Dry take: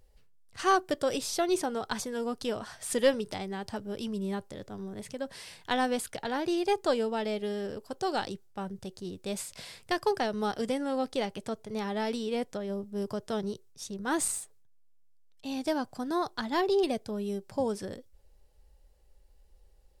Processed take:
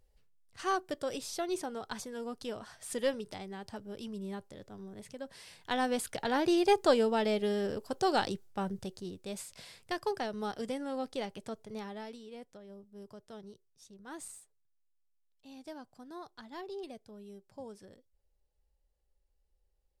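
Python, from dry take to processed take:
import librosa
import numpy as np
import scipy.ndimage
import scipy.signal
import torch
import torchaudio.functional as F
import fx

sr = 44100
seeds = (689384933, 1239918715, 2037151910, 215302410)

y = fx.gain(x, sr, db=fx.line((5.38, -7.0), (6.37, 2.0), (8.73, 2.0), (9.28, -6.0), (11.71, -6.0), (12.21, -16.0)))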